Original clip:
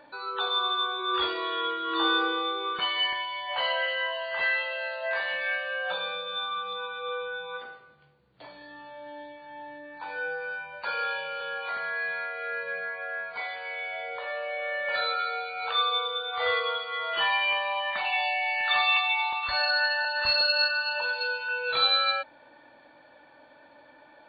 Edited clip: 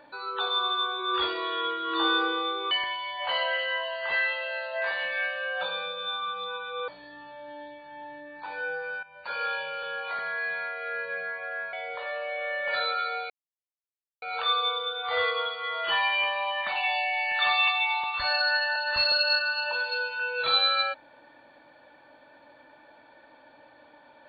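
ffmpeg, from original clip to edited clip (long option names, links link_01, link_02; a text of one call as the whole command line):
ffmpeg -i in.wav -filter_complex "[0:a]asplit=6[link_01][link_02][link_03][link_04][link_05][link_06];[link_01]atrim=end=2.712[link_07];[link_02]atrim=start=2.998:end=7.172[link_08];[link_03]atrim=start=8.458:end=10.61,asetpts=PTS-STARTPTS,afade=type=out:start_time=2.148:duration=0.004:curve=hsin:silence=0.177828[link_09];[link_04]atrim=start=10.61:end=13.312,asetpts=PTS-STARTPTS,afade=type=in:duration=0.42:silence=0.177828[link_10];[link_05]atrim=start=13.938:end=15.51,asetpts=PTS-STARTPTS,afade=type=out:start_time=1.568:duration=0.004:curve=hsin,apad=pad_dur=0.92[link_11];[link_06]atrim=start=15.51,asetpts=PTS-STARTPTS,afade=type=in:duration=0.004:curve=hsin[link_12];[link_07][link_08]acrossfade=duration=0.004:curve1=hsin:curve2=hsin[link_13];[link_09][link_10]concat=n=2:v=0:a=1[link_14];[link_13][link_14]acrossfade=duration=0.004:curve1=hsin:curve2=hsin[link_15];[link_11][link_12]concat=n=2:v=0:a=1[link_16];[link_15][link_16]acrossfade=duration=0.004:curve1=hsin:curve2=hsin" out.wav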